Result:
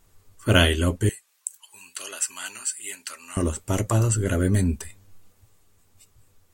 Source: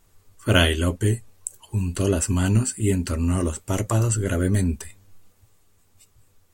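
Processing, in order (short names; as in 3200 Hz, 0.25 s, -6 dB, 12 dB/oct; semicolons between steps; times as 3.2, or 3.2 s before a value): 1.09–3.37 HPF 1500 Hz 12 dB/oct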